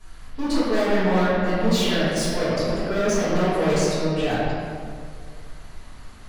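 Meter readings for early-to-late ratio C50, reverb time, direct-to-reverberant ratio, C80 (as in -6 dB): -4.0 dB, 2.1 s, -14.0 dB, -1.5 dB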